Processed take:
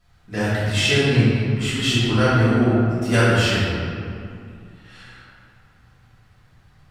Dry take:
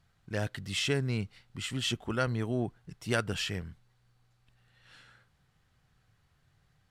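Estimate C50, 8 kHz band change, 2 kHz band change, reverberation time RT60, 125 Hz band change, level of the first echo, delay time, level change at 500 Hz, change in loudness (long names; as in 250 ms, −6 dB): −4.0 dB, +10.0 dB, +14.5 dB, 2.4 s, +16.0 dB, no echo audible, no echo audible, +13.5 dB, +14.0 dB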